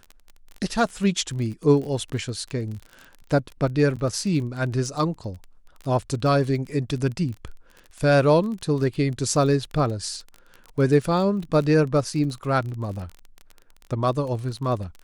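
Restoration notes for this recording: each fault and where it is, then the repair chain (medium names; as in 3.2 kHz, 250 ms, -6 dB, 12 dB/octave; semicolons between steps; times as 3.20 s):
crackle 25 per s -31 dBFS
3.96–3.97 s: dropout 6.6 ms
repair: de-click; interpolate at 3.96 s, 6.6 ms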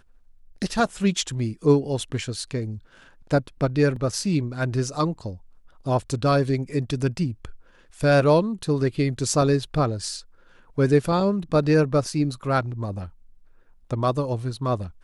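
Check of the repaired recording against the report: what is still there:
nothing left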